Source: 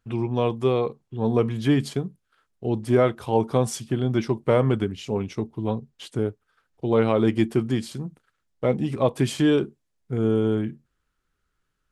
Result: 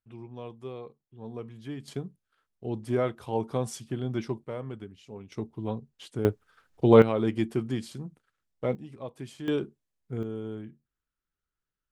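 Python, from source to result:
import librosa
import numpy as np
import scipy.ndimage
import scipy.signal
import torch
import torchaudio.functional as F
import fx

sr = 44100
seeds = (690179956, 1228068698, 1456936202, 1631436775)

y = fx.gain(x, sr, db=fx.steps((0.0, -18.0), (1.88, -8.0), (4.45, -17.0), (5.32, -6.5), (6.25, 4.5), (7.02, -6.5), (8.75, -18.0), (9.48, -7.5), (10.23, -14.5)))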